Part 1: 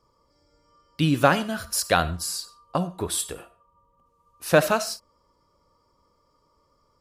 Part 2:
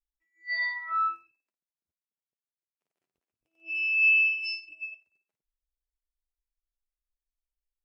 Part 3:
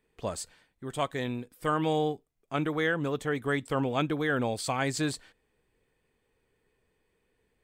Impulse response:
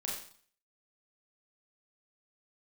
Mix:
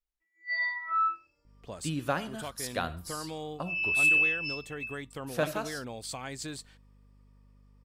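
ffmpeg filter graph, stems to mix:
-filter_complex "[0:a]adelay=850,volume=-12dB[a];[1:a]highshelf=f=3.3k:g=-7.5,volume=1dB[b];[2:a]acompressor=threshold=-35dB:ratio=2,aeval=exprs='val(0)+0.00251*(sin(2*PI*50*n/s)+sin(2*PI*2*50*n/s)/2+sin(2*PI*3*50*n/s)/3+sin(2*PI*4*50*n/s)/4+sin(2*PI*5*50*n/s)/5)':c=same,adynamicequalizer=threshold=0.00251:dfrequency=2500:dqfactor=0.7:tfrequency=2500:tqfactor=0.7:attack=5:release=100:ratio=0.375:range=2.5:mode=boostabove:tftype=highshelf,adelay=1450,volume=-5.5dB[c];[a][b][c]amix=inputs=3:normalize=0"

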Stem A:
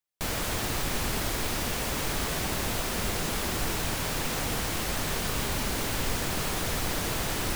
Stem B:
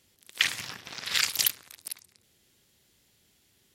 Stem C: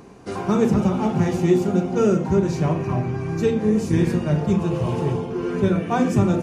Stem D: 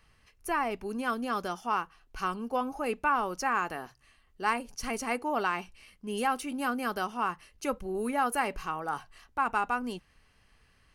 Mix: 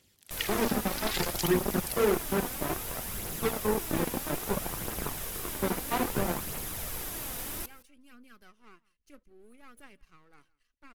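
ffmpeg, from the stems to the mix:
-filter_complex "[0:a]equalizer=f=12k:t=o:w=0.67:g=14,bandreject=f=4.3k:w=20,adelay=100,volume=-11.5dB,asplit=2[a][b];[b]volume=-21.5dB[c];[1:a]acompressor=threshold=-31dB:ratio=6,volume=-1.5dB[d];[2:a]highpass=f=310:p=1,tiltshelf=f=1.4k:g=3,acrusher=bits=2:mix=0:aa=0.5,volume=-9.5dB[e];[3:a]aeval=exprs='if(lt(val(0),0),0.251*val(0),val(0))':c=same,equalizer=f=830:t=o:w=0.93:g=-12.5,adelay=1450,volume=-19.5dB,asplit=2[f][g];[g]volume=-23.5dB[h];[c][h]amix=inputs=2:normalize=0,aecho=0:1:167:1[i];[a][d][e][f][i]amix=inputs=5:normalize=0,aphaser=in_gain=1:out_gain=1:delay=4.2:decay=0.36:speed=0.61:type=triangular"

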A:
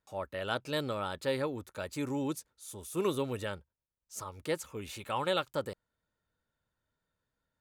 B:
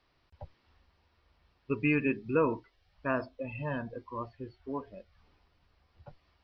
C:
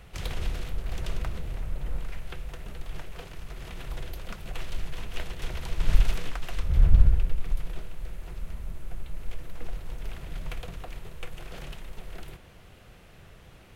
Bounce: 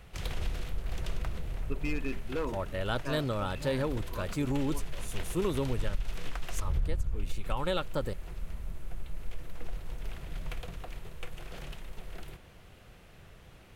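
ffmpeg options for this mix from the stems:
-filter_complex "[0:a]lowshelf=f=170:g=12,adelay=2400,volume=0.5dB[a];[1:a]aeval=exprs='0.1*(abs(mod(val(0)/0.1+3,4)-2)-1)':c=same,volume=-6.5dB[b];[2:a]volume=-2.5dB[c];[a][b][c]amix=inputs=3:normalize=0,acompressor=threshold=-24dB:ratio=16"

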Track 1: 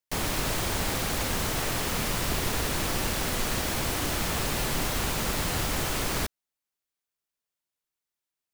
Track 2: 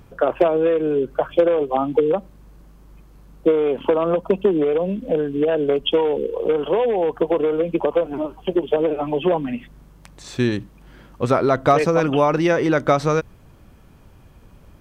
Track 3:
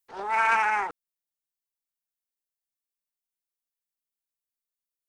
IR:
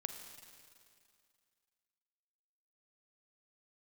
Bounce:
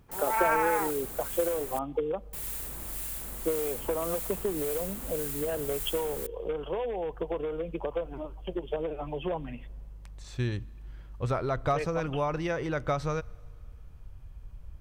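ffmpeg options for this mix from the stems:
-filter_complex "[0:a]acrossover=split=1400[a][b];[a]aeval=exprs='val(0)*(1-0.5/2+0.5/2*cos(2*PI*1.8*n/s))':c=same[c];[b]aeval=exprs='val(0)*(1-0.5/2-0.5/2*cos(2*PI*1.8*n/s))':c=same[d];[c][d]amix=inputs=2:normalize=0,aexciter=amount=5.3:drive=3.6:freq=7.5k,volume=-15dB,asplit=3[e][f][g];[e]atrim=end=1.79,asetpts=PTS-STARTPTS,afade=t=out:st=1.786:d=0.004:c=hsin[h];[f]atrim=start=1.79:end=2.33,asetpts=PTS-STARTPTS,volume=0[i];[g]atrim=start=2.33,asetpts=PTS-STARTPTS,afade=t=in:d=0.004:c=hsin[j];[h][i][j]concat=n=3:v=0:a=1[k];[1:a]asubboost=boost=9:cutoff=78,volume=-12.5dB,asplit=2[l][m];[m]volume=-16dB[n];[2:a]equalizer=f=3.7k:t=o:w=1.4:g=-13.5,volume=-2dB[o];[3:a]atrim=start_sample=2205[p];[n][p]afir=irnorm=-1:irlink=0[q];[k][l][o][q]amix=inputs=4:normalize=0"

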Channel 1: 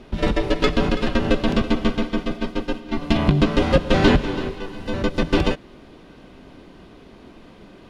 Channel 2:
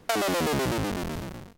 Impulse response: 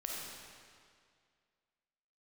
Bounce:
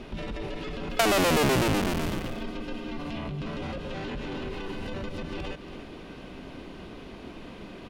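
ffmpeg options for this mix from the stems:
-filter_complex "[0:a]acompressor=threshold=-23dB:ratio=6,alimiter=level_in=5.5dB:limit=-24dB:level=0:latency=1:release=24,volume=-5.5dB,volume=2dB,asplit=2[a][b];[b]volume=-11.5dB[c];[1:a]adelay=900,volume=3dB[d];[c]aecho=0:1:282:1[e];[a][d][e]amix=inputs=3:normalize=0,equalizer=f=2.6k:w=2.8:g=3.5"

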